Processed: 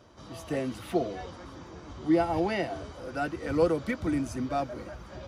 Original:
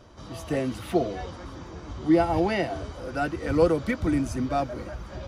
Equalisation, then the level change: HPF 56 Hz; bell 79 Hz -3 dB 1.8 oct; -3.5 dB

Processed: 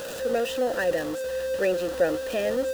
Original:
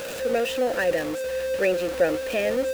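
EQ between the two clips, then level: bell 2400 Hz -5 dB 0.35 oct; notch 2200 Hz, Q 7.7; -1.5 dB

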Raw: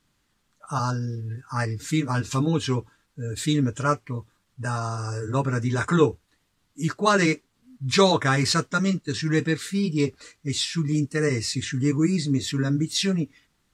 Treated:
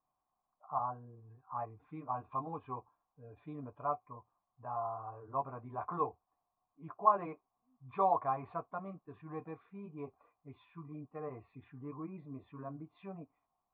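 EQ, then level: vocal tract filter a; +3.0 dB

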